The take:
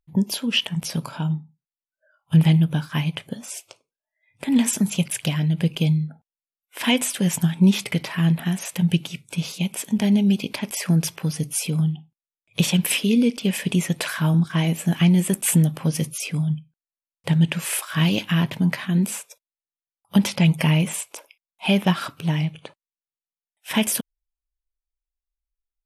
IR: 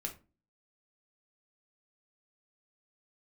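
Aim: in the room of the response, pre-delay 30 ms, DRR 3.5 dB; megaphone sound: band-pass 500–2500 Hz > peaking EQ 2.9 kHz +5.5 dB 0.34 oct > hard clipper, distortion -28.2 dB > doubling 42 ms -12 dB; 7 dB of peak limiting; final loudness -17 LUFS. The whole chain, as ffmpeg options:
-filter_complex "[0:a]alimiter=limit=0.2:level=0:latency=1,asplit=2[s0][s1];[1:a]atrim=start_sample=2205,adelay=30[s2];[s1][s2]afir=irnorm=-1:irlink=0,volume=0.708[s3];[s0][s3]amix=inputs=2:normalize=0,highpass=500,lowpass=2500,equalizer=f=2900:t=o:w=0.34:g=5.5,asoftclip=type=hard:threshold=0.133,asplit=2[s4][s5];[s5]adelay=42,volume=0.251[s6];[s4][s6]amix=inputs=2:normalize=0,volume=5.31"

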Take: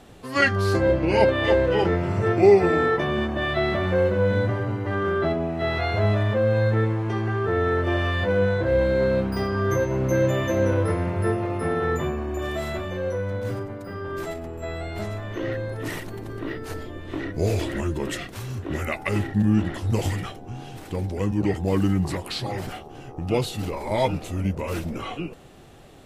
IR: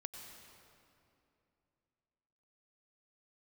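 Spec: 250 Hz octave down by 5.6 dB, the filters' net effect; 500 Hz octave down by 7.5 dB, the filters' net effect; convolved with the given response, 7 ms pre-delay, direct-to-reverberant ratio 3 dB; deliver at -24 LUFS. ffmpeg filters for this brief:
-filter_complex "[0:a]equalizer=f=250:t=o:g=-5.5,equalizer=f=500:t=o:g=-7.5,asplit=2[s0][s1];[1:a]atrim=start_sample=2205,adelay=7[s2];[s1][s2]afir=irnorm=-1:irlink=0,volume=1[s3];[s0][s3]amix=inputs=2:normalize=0,volume=1.33"

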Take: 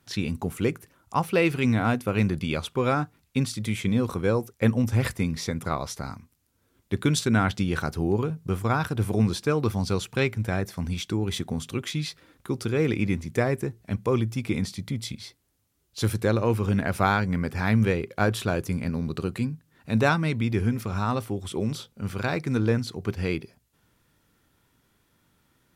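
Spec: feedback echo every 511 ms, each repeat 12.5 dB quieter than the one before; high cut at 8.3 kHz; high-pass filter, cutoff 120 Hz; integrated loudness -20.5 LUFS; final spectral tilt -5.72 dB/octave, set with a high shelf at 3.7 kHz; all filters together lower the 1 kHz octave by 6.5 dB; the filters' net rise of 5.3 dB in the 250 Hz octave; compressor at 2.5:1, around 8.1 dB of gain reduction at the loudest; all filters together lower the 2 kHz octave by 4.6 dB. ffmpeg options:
-af "highpass=120,lowpass=8300,equalizer=f=250:t=o:g=7.5,equalizer=f=1000:t=o:g=-9,equalizer=f=2000:t=o:g=-5,highshelf=f=3700:g=7,acompressor=threshold=0.0501:ratio=2.5,aecho=1:1:511|1022|1533:0.237|0.0569|0.0137,volume=2.82"

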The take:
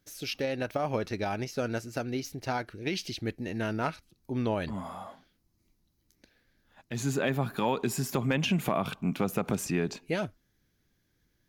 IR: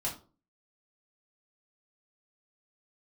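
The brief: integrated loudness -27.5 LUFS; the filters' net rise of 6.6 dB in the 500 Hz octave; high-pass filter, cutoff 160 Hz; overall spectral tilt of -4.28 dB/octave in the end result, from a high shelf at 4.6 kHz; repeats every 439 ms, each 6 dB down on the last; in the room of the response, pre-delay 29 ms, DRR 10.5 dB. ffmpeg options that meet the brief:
-filter_complex "[0:a]highpass=160,equalizer=f=500:t=o:g=8,highshelf=f=4600:g=8,aecho=1:1:439|878|1317|1756|2195|2634:0.501|0.251|0.125|0.0626|0.0313|0.0157,asplit=2[s0][s1];[1:a]atrim=start_sample=2205,adelay=29[s2];[s1][s2]afir=irnorm=-1:irlink=0,volume=0.2[s3];[s0][s3]amix=inputs=2:normalize=0,volume=0.944"

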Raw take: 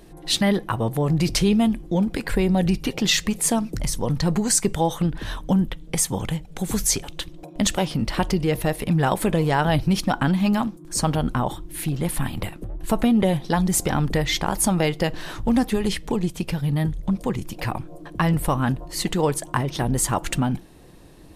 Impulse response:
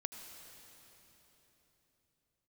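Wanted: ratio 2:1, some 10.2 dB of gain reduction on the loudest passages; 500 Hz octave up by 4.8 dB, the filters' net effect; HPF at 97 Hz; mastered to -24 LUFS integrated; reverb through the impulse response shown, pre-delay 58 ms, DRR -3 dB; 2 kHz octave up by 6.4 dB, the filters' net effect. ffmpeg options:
-filter_complex "[0:a]highpass=97,equalizer=f=500:t=o:g=5.5,equalizer=f=2000:t=o:g=7.5,acompressor=threshold=0.0251:ratio=2,asplit=2[s0][s1];[1:a]atrim=start_sample=2205,adelay=58[s2];[s1][s2]afir=irnorm=-1:irlink=0,volume=1.68[s3];[s0][s3]amix=inputs=2:normalize=0,volume=1.12"

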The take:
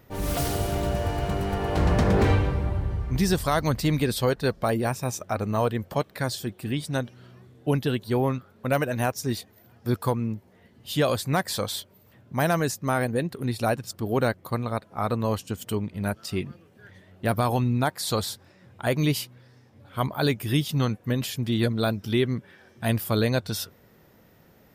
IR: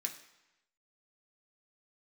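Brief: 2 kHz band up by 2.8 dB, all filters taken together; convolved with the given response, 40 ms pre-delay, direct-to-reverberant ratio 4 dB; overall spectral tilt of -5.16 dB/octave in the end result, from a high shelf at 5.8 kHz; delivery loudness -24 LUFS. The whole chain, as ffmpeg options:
-filter_complex "[0:a]equalizer=f=2000:t=o:g=4.5,highshelf=f=5800:g=-6.5,asplit=2[s0][s1];[1:a]atrim=start_sample=2205,adelay=40[s2];[s1][s2]afir=irnorm=-1:irlink=0,volume=0.668[s3];[s0][s3]amix=inputs=2:normalize=0,volume=1.19"

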